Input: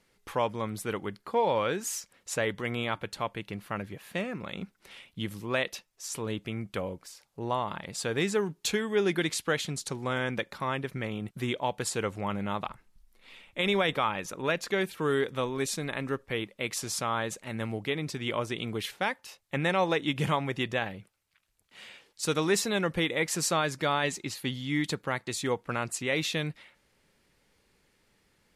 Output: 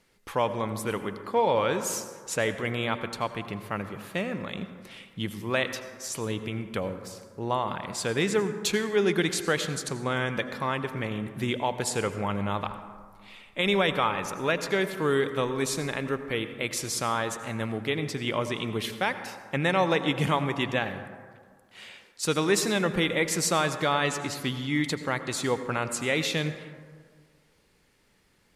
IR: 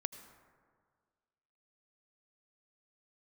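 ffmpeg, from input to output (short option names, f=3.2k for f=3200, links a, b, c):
-filter_complex "[1:a]atrim=start_sample=2205[a];[0:a][a]afir=irnorm=-1:irlink=0,volume=3.5dB"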